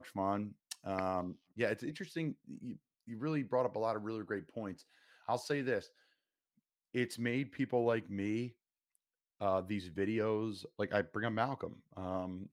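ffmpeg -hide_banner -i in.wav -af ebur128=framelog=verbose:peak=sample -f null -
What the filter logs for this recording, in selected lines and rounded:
Integrated loudness:
  I:         -38.0 LUFS
  Threshold: -48.2 LUFS
Loudness range:
  LRA:         2.7 LU
  Threshold: -58.7 LUFS
  LRA low:   -40.2 LUFS
  LRA high:  -37.5 LUFS
Sample peak:
  Peak:      -17.6 dBFS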